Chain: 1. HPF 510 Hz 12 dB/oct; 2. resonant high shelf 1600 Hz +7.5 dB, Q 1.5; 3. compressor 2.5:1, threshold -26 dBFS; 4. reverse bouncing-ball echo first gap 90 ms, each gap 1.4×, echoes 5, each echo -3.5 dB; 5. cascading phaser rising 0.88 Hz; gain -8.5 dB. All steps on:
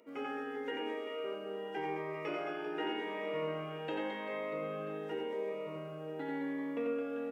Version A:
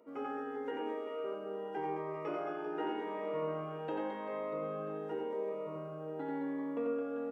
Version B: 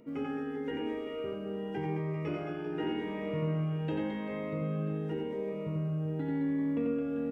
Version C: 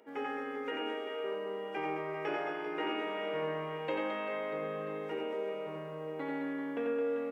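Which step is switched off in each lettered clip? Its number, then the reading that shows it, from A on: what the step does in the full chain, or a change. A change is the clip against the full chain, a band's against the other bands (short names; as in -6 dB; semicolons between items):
2, 4 kHz band -9.5 dB; 1, 125 Hz band +19.5 dB; 5, 125 Hz band -2.0 dB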